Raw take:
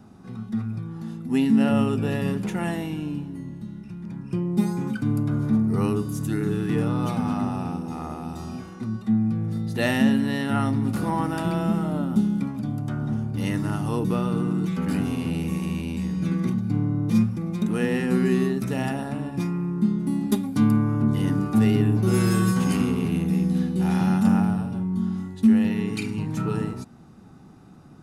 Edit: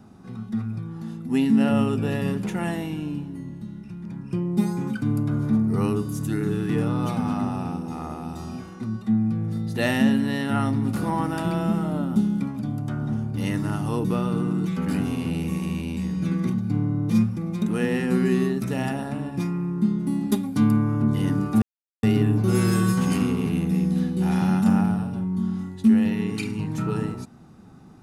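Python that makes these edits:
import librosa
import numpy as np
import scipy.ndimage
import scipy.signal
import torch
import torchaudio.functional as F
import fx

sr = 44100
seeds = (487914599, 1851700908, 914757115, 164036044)

y = fx.edit(x, sr, fx.insert_silence(at_s=21.62, length_s=0.41), tone=tone)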